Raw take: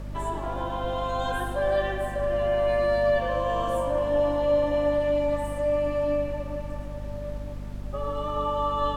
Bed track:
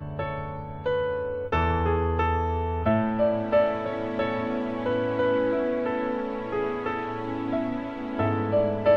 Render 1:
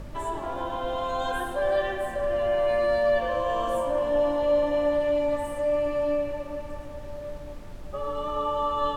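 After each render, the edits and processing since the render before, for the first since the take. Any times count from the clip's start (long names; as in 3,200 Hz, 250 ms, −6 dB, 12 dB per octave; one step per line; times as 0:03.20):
hum removal 50 Hz, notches 5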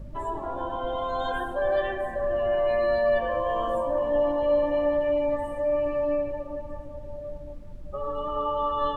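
broadband denoise 13 dB, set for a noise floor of −38 dBFS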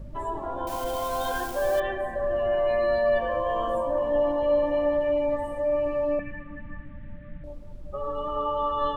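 0:00.67–0:01.80: spike at every zero crossing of −28.5 dBFS
0:06.19–0:07.44: drawn EQ curve 100 Hz 0 dB, 210 Hz +8 dB, 440 Hz −15 dB, 730 Hz −17 dB, 1,800 Hz +13 dB, 3,600 Hz −3 dB, 5,600 Hz −30 dB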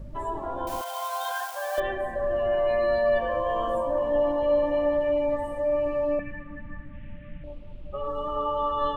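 0:00.81–0:01.78: Butterworth high-pass 670 Hz
0:06.93–0:08.08: drawn EQ curve 1,700 Hz 0 dB, 2,800 Hz +11 dB, 6,100 Hz −12 dB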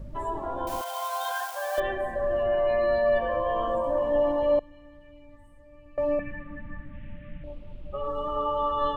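0:02.43–0:03.84: high-frequency loss of the air 77 metres
0:04.59–0:05.98: guitar amp tone stack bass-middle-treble 6-0-2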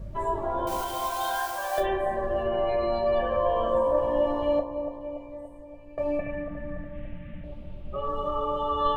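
bucket-brigade delay 286 ms, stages 2,048, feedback 57%, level −8 dB
reverb whose tail is shaped and stops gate 80 ms falling, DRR 2 dB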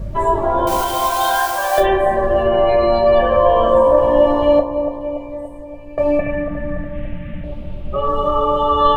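level +12 dB
brickwall limiter −2 dBFS, peak gain reduction 1.5 dB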